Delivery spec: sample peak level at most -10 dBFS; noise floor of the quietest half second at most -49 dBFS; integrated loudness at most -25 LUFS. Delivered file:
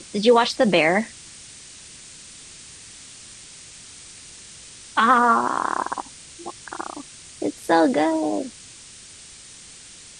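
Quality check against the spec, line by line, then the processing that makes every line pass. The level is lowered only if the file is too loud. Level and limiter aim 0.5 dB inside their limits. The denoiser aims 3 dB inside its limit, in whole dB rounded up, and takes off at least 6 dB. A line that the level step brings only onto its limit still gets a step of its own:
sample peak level -5.5 dBFS: fail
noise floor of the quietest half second -44 dBFS: fail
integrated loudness -20.5 LUFS: fail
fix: noise reduction 6 dB, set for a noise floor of -44 dBFS; trim -5 dB

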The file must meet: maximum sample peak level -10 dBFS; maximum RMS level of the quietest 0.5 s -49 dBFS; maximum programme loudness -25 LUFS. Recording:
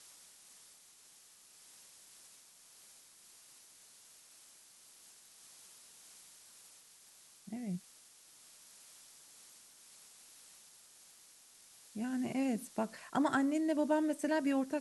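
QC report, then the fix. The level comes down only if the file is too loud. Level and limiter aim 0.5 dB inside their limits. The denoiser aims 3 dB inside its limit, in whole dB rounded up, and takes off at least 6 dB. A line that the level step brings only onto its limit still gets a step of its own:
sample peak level -20.0 dBFS: pass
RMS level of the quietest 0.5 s -61 dBFS: pass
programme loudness -35.0 LUFS: pass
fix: none needed

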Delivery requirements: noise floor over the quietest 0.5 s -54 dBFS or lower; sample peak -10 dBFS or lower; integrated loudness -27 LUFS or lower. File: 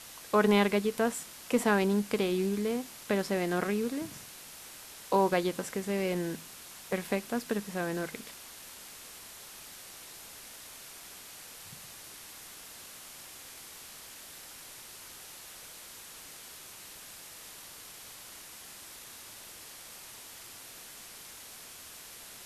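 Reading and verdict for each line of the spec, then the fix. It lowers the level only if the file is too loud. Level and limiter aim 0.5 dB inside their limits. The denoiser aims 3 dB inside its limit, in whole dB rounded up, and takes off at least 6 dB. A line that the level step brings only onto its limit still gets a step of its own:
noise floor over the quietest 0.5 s -48 dBFS: fail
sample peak -13.0 dBFS: pass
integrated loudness -30.5 LUFS: pass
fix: noise reduction 9 dB, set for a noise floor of -48 dBFS

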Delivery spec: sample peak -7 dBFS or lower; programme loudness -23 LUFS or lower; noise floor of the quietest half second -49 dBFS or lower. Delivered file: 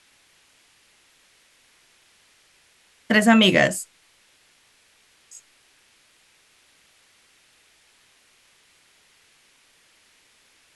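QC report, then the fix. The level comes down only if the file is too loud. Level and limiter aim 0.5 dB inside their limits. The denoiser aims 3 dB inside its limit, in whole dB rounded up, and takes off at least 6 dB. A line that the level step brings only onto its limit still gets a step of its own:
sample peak -4.5 dBFS: fail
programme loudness -18.0 LUFS: fail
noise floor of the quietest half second -60 dBFS: pass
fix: trim -5.5 dB

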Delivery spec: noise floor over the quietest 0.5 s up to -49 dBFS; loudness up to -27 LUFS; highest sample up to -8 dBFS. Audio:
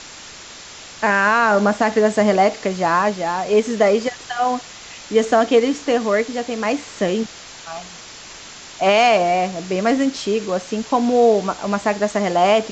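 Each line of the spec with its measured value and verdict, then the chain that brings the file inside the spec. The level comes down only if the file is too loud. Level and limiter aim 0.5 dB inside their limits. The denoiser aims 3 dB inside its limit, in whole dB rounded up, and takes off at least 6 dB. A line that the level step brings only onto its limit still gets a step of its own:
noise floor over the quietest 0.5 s -38 dBFS: fail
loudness -18.0 LUFS: fail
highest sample -4.5 dBFS: fail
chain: noise reduction 6 dB, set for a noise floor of -38 dBFS; trim -9.5 dB

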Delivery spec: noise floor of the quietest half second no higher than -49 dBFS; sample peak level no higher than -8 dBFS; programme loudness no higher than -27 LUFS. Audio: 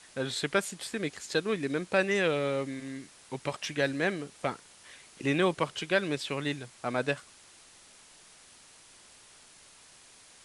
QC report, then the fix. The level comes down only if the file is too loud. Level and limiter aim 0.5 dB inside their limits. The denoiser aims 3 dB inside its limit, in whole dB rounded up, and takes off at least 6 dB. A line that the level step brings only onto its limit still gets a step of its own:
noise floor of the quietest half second -56 dBFS: pass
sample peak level -12.0 dBFS: pass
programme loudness -31.0 LUFS: pass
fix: none needed

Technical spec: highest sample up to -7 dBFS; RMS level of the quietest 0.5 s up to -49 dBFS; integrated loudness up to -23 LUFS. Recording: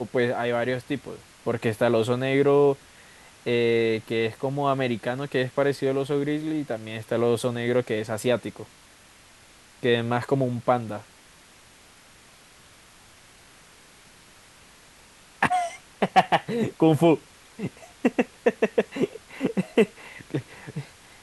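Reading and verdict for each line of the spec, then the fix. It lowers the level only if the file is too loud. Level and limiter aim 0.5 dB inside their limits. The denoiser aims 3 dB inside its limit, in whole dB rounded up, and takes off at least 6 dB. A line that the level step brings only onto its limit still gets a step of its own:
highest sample -5.0 dBFS: fail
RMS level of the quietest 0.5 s -53 dBFS: pass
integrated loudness -25.0 LUFS: pass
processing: peak limiter -7.5 dBFS

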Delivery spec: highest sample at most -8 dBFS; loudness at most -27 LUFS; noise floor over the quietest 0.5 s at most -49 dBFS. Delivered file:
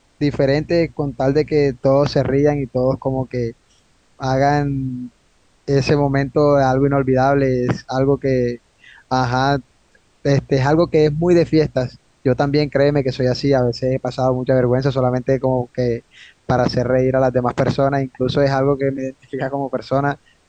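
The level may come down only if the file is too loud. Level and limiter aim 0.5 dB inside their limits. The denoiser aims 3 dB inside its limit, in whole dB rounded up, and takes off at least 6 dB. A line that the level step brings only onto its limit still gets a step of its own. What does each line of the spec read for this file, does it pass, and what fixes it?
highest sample -4.0 dBFS: fail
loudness -18.0 LUFS: fail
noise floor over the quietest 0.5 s -57 dBFS: pass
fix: trim -9.5 dB

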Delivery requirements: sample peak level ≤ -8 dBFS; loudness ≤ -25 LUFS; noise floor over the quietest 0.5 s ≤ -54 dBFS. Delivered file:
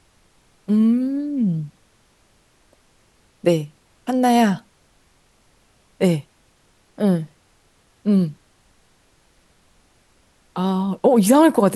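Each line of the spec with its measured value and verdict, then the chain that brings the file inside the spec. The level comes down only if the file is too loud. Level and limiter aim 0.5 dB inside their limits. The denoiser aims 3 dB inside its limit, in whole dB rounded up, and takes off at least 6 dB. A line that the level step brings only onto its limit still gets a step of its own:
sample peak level -4.0 dBFS: fail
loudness -19.5 LUFS: fail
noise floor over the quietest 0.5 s -59 dBFS: pass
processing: trim -6 dB

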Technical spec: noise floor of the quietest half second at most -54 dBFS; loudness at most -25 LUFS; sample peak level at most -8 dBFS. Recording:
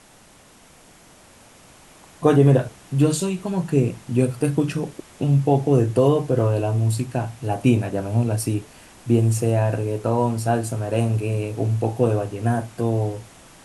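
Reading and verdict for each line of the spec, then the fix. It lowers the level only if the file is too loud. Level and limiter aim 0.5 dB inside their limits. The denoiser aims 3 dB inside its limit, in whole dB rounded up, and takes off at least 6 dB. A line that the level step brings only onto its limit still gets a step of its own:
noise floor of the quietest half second -51 dBFS: fail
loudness -21.5 LUFS: fail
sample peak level -4.0 dBFS: fail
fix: trim -4 dB; peak limiter -8.5 dBFS

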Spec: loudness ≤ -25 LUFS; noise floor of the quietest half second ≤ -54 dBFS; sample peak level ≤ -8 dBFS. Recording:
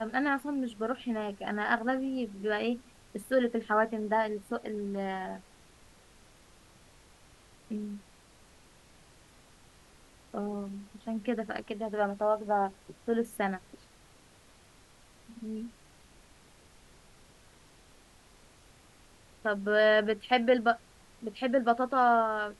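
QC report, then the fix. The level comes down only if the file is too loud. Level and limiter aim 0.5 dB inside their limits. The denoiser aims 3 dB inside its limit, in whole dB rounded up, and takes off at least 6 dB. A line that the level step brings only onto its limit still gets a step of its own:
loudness -31.0 LUFS: pass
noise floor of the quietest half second -59 dBFS: pass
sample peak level -12.0 dBFS: pass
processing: none needed

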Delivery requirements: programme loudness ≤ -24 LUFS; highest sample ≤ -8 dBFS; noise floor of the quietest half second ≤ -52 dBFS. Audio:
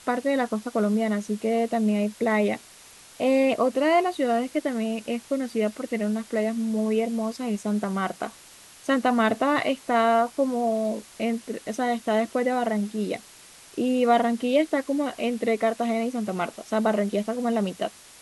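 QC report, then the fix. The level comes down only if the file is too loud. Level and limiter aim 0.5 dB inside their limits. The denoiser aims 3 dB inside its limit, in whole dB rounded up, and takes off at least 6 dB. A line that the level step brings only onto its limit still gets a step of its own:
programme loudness -25.5 LUFS: pass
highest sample -9.0 dBFS: pass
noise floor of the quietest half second -49 dBFS: fail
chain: noise reduction 6 dB, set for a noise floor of -49 dBFS

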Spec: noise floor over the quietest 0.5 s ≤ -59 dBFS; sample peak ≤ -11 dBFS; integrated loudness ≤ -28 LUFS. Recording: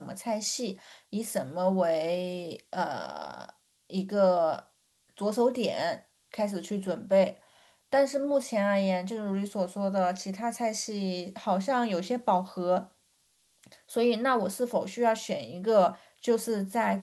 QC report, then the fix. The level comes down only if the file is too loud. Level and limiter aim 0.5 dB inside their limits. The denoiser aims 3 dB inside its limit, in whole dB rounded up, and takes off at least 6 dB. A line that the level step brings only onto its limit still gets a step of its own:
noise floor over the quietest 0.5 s -69 dBFS: pass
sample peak -12.0 dBFS: pass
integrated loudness -29.0 LUFS: pass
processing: none needed

